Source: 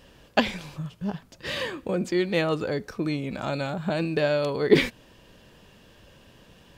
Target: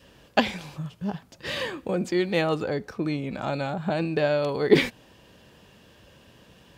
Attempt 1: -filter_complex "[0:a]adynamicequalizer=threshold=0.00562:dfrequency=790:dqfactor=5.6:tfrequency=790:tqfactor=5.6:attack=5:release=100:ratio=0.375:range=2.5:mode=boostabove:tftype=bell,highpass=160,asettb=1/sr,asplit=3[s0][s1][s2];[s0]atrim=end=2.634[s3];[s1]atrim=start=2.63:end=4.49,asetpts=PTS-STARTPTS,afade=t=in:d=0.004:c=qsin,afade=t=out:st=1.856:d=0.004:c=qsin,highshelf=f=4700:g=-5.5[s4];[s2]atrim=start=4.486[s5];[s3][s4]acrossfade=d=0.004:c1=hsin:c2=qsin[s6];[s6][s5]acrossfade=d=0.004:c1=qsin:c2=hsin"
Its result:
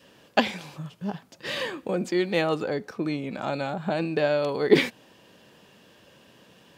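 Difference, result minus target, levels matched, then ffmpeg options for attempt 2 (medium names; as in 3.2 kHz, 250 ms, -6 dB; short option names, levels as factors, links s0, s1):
125 Hz band -3.0 dB
-filter_complex "[0:a]adynamicequalizer=threshold=0.00562:dfrequency=790:dqfactor=5.6:tfrequency=790:tqfactor=5.6:attack=5:release=100:ratio=0.375:range=2.5:mode=boostabove:tftype=bell,highpass=53,asettb=1/sr,asplit=3[s0][s1][s2];[s0]atrim=end=2.634[s3];[s1]atrim=start=2.63:end=4.49,asetpts=PTS-STARTPTS,afade=t=in:d=0.004:c=qsin,afade=t=out:st=1.856:d=0.004:c=qsin,highshelf=f=4700:g=-5.5[s4];[s2]atrim=start=4.486[s5];[s3][s4]acrossfade=d=0.004:c1=hsin:c2=qsin[s6];[s6][s5]acrossfade=d=0.004:c1=qsin:c2=hsin"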